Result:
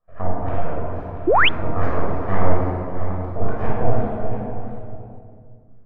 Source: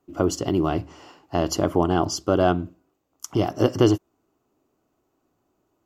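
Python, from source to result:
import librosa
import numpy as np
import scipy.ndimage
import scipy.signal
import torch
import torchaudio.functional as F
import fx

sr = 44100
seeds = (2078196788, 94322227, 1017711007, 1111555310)

y = fx.reverse_delay(x, sr, ms=338, wet_db=-9.0)
y = fx.highpass(y, sr, hz=170.0, slope=12, at=(0.44, 1.42))
y = fx.peak_eq(y, sr, hz=1700.0, db=10.0, octaves=1.6, at=(2.32, 3.52), fade=0.02)
y = np.abs(y)
y = fx.filter_lfo_lowpass(y, sr, shape='sine', hz=2.3, low_hz=590.0, high_hz=1900.0, q=1.6)
y = fx.echo_multitap(y, sr, ms=(611, 688), db=(-19.5, -13.0))
y = fx.room_shoebox(y, sr, seeds[0], volume_m3=2800.0, walls='mixed', distance_m=6.0)
y = fx.spec_paint(y, sr, seeds[1], shape='rise', start_s=1.27, length_s=0.22, low_hz=300.0, high_hz=3500.0, level_db=-4.0)
y = F.gain(torch.from_numpy(y), -10.5).numpy()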